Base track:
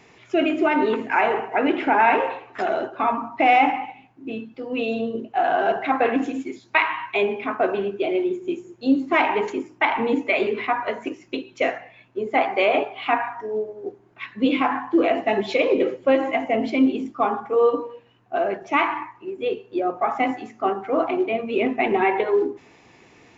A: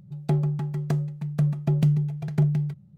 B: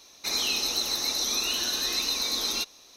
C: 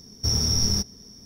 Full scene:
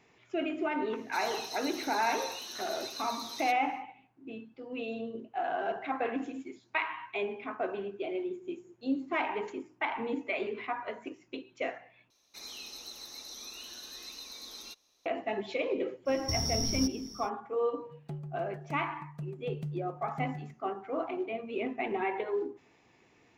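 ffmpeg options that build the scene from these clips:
ffmpeg -i bed.wav -i cue0.wav -i cue1.wav -i cue2.wav -filter_complex "[2:a]asplit=2[link_01][link_02];[0:a]volume=-12.5dB[link_03];[link_01]highpass=80[link_04];[3:a]acompressor=threshold=-27dB:ratio=6:attack=3.2:release=140:knee=1:detection=peak[link_05];[1:a]equalizer=frequency=78:width=1.5:gain=-5.5[link_06];[link_03]asplit=2[link_07][link_08];[link_07]atrim=end=12.104[link_09];[link_02]atrim=end=2.96,asetpts=PTS-STARTPTS,volume=-17.5dB[link_10];[link_08]atrim=start=15.056[link_11];[link_04]atrim=end=2.96,asetpts=PTS-STARTPTS,volume=-14.5dB,afade=type=in:duration=0.1,afade=type=out:start_time=2.86:duration=0.1,adelay=880[link_12];[link_05]atrim=end=1.25,asetpts=PTS-STARTPTS,volume=-1dB,afade=type=in:duration=0.05,afade=type=out:start_time=1.2:duration=0.05,adelay=16050[link_13];[link_06]atrim=end=2.97,asetpts=PTS-STARTPTS,volume=-16.5dB,afade=type=in:duration=0.004:curve=hsin,afade=type=out:start_time=2.966:duration=0.004:curve=hsin,adelay=784980S[link_14];[link_09][link_10]acrossfade=duration=0.004:curve1=hsin:curve2=hsin[link_15];[link_15][link_11]acrossfade=duration=0.004:curve1=hsin:curve2=hsin[link_16];[link_16][link_12][link_13][link_14]amix=inputs=4:normalize=0" out.wav

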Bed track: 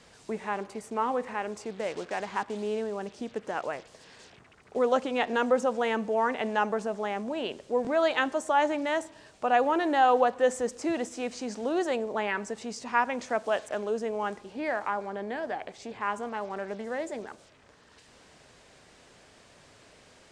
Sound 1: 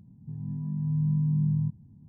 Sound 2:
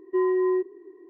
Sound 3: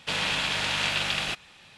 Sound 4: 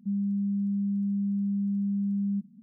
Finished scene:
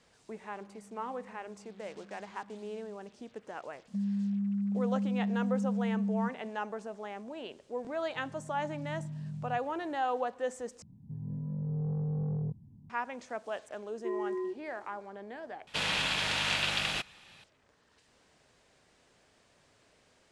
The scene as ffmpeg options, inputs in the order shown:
ffmpeg -i bed.wav -i cue0.wav -i cue1.wav -i cue2.wav -i cue3.wav -filter_complex "[4:a]asplit=2[link_01][link_02];[1:a]asplit=2[link_03][link_04];[0:a]volume=-10dB[link_05];[link_01]acompressor=threshold=-41dB:ratio=6:attack=3.2:release=140:knee=1:detection=peak[link_06];[link_04]asoftclip=type=tanh:threshold=-27.5dB[link_07];[link_05]asplit=3[link_08][link_09][link_10];[link_08]atrim=end=10.824[link_11];[link_07]atrim=end=2.08,asetpts=PTS-STARTPTS,volume=-2.5dB[link_12];[link_09]atrim=start=12.896:end=15.674[link_13];[3:a]atrim=end=1.77,asetpts=PTS-STARTPTS,volume=-3.5dB[link_14];[link_10]atrim=start=17.436[link_15];[link_06]atrim=end=2.62,asetpts=PTS-STARTPTS,volume=-15.5dB,afade=type=in:duration=0.004:curve=hsin,afade=type=out:start_time=2.616:duration=0.004:curve=hsin,adelay=560[link_16];[link_02]atrim=end=2.62,asetpts=PTS-STARTPTS,volume=-3.5dB,afade=type=in:duration=0.004:curve=hsin,afade=type=out:start_time=2.616:duration=0.004:curve=hsin,adelay=3880[link_17];[link_03]atrim=end=2.08,asetpts=PTS-STARTPTS,volume=-15dB,afade=type=in:duration=0.004:curve=hsin,afade=type=out:start_time=2.076:duration=0.004:curve=hsin,adelay=7880[link_18];[2:a]atrim=end=1.09,asetpts=PTS-STARTPTS,volume=-12dB,afade=type=in:duration=0.004:curve=hsin,afade=type=out:start_time=1.086:duration=0.004:curve=hsin,adelay=13910[link_19];[link_11][link_12]acrossfade=duration=0.004:curve1=hsin:curve2=hsin[link_20];[link_20][link_13]acrossfade=duration=0.004:curve1=hsin:curve2=hsin[link_21];[link_21][link_14]acrossfade=duration=0.004:curve1=hsin:curve2=hsin[link_22];[link_22][link_15]acrossfade=duration=0.004:curve1=hsin:curve2=hsin[link_23];[link_23][link_16][link_17][link_18][link_19]amix=inputs=5:normalize=0" out.wav

